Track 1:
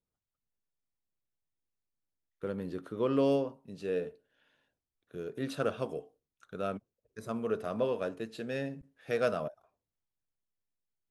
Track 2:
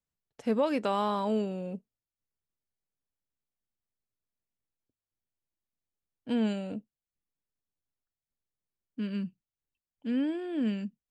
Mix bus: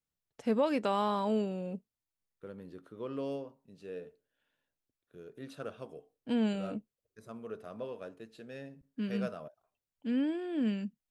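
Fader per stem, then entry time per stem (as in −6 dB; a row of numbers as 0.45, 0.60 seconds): −10.0, −1.5 decibels; 0.00, 0.00 seconds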